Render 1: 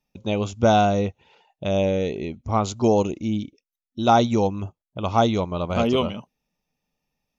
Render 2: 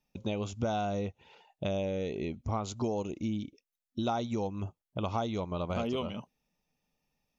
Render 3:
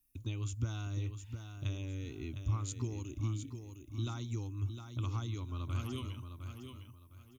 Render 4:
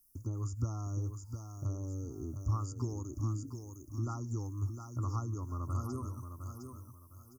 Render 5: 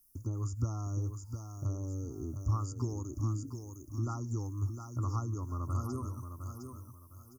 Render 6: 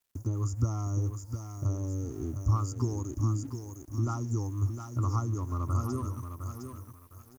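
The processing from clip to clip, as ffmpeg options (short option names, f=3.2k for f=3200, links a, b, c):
-af "acompressor=threshold=-29dB:ratio=5,volume=-1.5dB"
-af "firequalizer=gain_entry='entry(120,0);entry(190,-28);entry(270,-4);entry(490,-26);entry(720,-28);entry(1100,-11);entry(5600,-8);entry(9400,13)':delay=0.05:min_phase=1,aecho=1:1:708|1416|2124:0.398|0.111|0.0312,volume=3dB"
-filter_complex "[0:a]acrossover=split=3500[a][b];[b]acompressor=threshold=-60dB:ratio=4:attack=1:release=60[c];[a][c]amix=inputs=2:normalize=0,tiltshelf=f=1.2k:g=-4,afftfilt=real='re*(1-between(b*sr/4096,1400,4600))':imag='im*(1-between(b*sr/4096,1400,4600))':win_size=4096:overlap=0.75,volume=5dB"
-af "bandreject=f=7.9k:w=30,volume=1.5dB"
-af "aeval=exprs='sgn(val(0))*max(abs(val(0))-0.001,0)':c=same,volume=5dB"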